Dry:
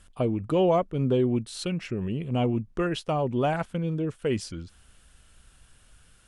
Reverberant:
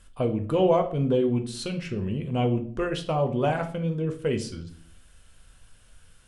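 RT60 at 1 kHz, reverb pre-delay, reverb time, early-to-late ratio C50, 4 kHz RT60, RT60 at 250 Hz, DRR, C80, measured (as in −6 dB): 0.45 s, 4 ms, 0.50 s, 12.0 dB, 0.40 s, 0.70 s, 5.0 dB, 17.0 dB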